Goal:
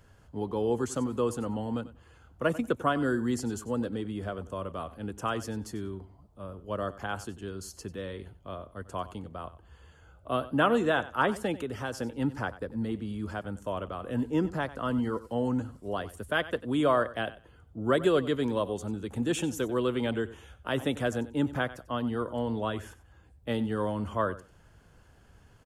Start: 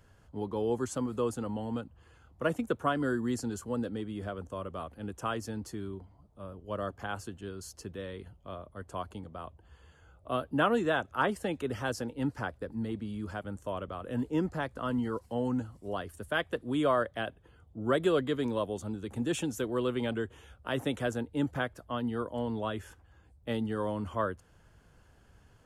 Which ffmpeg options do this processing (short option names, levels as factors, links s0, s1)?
-filter_complex "[0:a]asettb=1/sr,asplit=3[s0][s1][s2];[s0]atrim=end=11.544[s3];[s1]atrim=start=11.54:end=12,asetpts=PTS-STARTPTS,afade=t=in:d=0.004:c=qsin,afade=t=out:st=0.456:d=0.004:c=qsin,acompressor=threshold=0.02:ratio=3[s4];[s2]atrim=start=11.996[s5];[s3][s4]acrossfade=d=0.004:c1=hsin:c2=qsin[s6];[s6][s5]acrossfade=d=0.004:c1=qsin:c2=hsin,aecho=1:1:94|188:0.15|0.0254,volume=1.33"